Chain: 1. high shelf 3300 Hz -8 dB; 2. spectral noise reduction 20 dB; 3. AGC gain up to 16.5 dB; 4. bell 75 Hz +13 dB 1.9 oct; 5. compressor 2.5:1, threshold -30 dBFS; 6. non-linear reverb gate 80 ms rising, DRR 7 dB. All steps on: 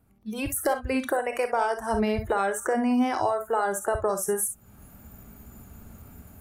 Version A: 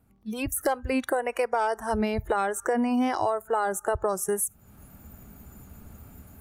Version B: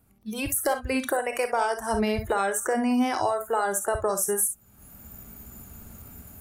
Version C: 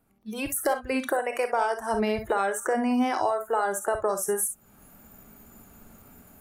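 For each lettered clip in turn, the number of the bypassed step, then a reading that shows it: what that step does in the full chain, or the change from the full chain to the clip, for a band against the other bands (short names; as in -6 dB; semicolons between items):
6, momentary loudness spread change -1 LU; 1, 8 kHz band +4.5 dB; 4, 125 Hz band -7.0 dB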